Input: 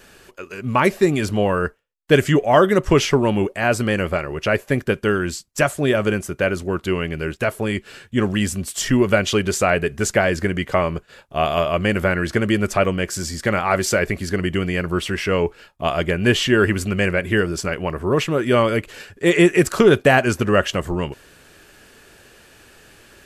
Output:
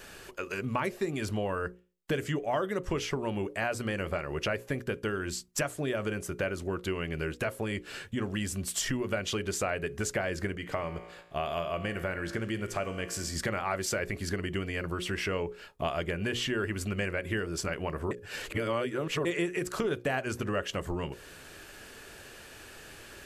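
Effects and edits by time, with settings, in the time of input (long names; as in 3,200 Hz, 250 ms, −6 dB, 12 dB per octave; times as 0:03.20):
0:10.55–0:13.36: tuned comb filter 57 Hz, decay 0.99 s
0:18.11–0:19.25: reverse
whole clip: downward compressor 4 to 1, threshold −30 dBFS; parametric band 200 Hz −2 dB; mains-hum notches 60/120/180/240/300/360/420/480/540 Hz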